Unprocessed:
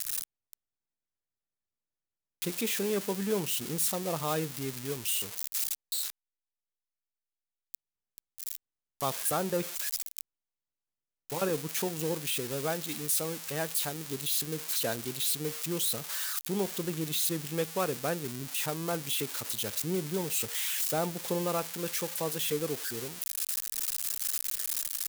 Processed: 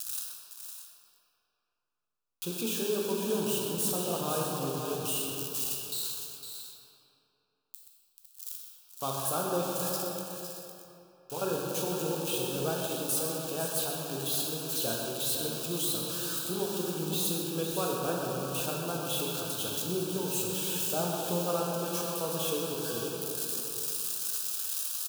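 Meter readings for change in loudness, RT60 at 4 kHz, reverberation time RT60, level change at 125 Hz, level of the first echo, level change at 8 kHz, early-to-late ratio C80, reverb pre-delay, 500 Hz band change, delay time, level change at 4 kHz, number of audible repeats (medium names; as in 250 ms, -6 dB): 0.0 dB, 1.7 s, 2.9 s, +0.5 dB, -9.5 dB, -0.5 dB, -0.5 dB, 10 ms, +1.5 dB, 128 ms, +0.5 dB, 3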